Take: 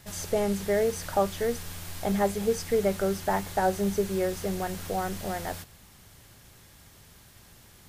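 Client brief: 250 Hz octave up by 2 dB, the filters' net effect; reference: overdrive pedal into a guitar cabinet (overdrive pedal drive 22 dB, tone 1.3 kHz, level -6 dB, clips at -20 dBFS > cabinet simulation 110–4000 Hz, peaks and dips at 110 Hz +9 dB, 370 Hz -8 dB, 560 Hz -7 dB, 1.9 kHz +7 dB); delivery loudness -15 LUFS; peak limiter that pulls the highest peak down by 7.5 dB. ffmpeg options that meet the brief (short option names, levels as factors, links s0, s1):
-filter_complex "[0:a]equalizer=f=250:t=o:g=4,alimiter=limit=0.1:level=0:latency=1,asplit=2[s0][s1];[s1]highpass=f=720:p=1,volume=12.6,asoftclip=type=tanh:threshold=0.1[s2];[s0][s2]amix=inputs=2:normalize=0,lowpass=f=1300:p=1,volume=0.501,highpass=110,equalizer=f=110:t=q:w=4:g=9,equalizer=f=370:t=q:w=4:g=-8,equalizer=f=560:t=q:w=4:g=-7,equalizer=f=1900:t=q:w=4:g=7,lowpass=f=4000:w=0.5412,lowpass=f=4000:w=1.3066,volume=6.31"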